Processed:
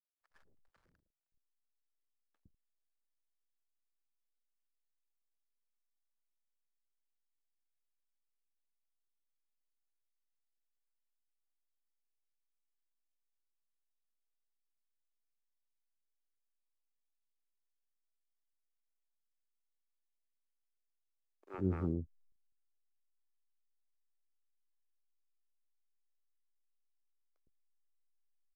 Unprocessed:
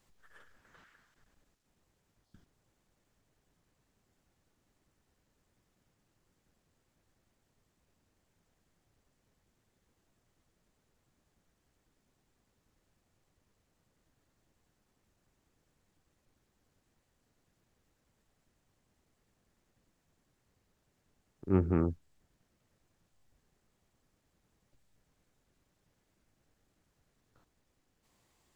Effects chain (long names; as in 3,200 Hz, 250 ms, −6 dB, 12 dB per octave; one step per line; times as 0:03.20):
slack as between gear wheels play −52.5 dBFS
multiband delay without the direct sound highs, lows 110 ms, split 510 Hz
level −6 dB